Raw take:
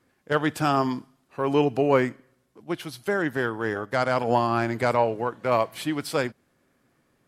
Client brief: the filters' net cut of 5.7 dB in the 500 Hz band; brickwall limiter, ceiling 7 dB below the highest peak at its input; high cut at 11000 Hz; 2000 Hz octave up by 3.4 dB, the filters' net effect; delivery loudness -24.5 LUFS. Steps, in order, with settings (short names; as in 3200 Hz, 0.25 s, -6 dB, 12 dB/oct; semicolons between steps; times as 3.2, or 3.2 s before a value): LPF 11000 Hz; bell 500 Hz -7.5 dB; bell 2000 Hz +5 dB; gain +4 dB; limiter -11 dBFS